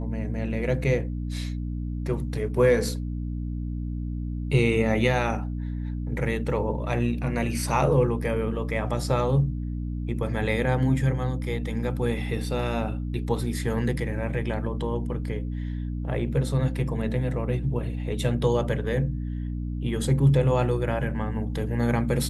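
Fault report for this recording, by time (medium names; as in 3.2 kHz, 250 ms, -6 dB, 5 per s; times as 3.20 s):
hum 60 Hz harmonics 5 -30 dBFS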